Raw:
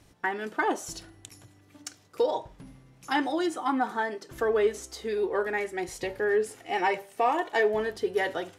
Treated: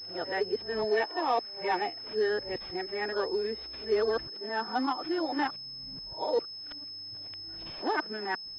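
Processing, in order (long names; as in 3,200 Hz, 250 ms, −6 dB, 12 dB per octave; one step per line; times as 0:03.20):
played backwards from end to start
switching amplifier with a slow clock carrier 5,200 Hz
level −3 dB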